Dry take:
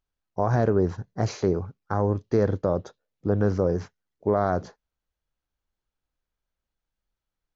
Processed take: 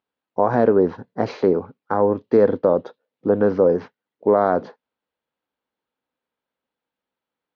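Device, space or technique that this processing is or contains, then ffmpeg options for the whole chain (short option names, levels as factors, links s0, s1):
kitchen radio: -af "highpass=220,equalizer=f=250:t=q:w=4:g=7,equalizer=f=490:t=q:w=4:g=6,equalizer=f=920:t=q:w=4:g=4,lowpass=f=3900:w=0.5412,lowpass=f=3900:w=1.3066,volume=1.68"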